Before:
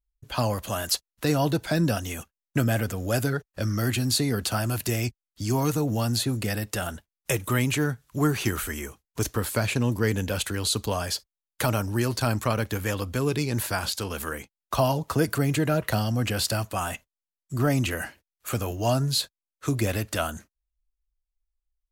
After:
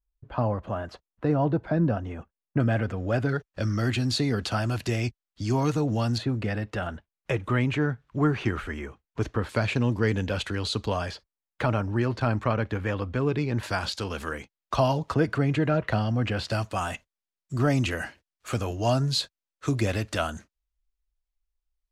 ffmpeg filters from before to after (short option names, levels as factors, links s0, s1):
-af "asetnsamples=n=441:p=0,asendcmd='2.6 lowpass f 2300;3.29 lowpass f 4700;6.18 lowpass f 2400;9.49 lowpass f 4000;11.11 lowpass f 2400;13.63 lowpass f 5000;15.14 lowpass f 2900;16.51 lowpass f 6300',lowpass=1200"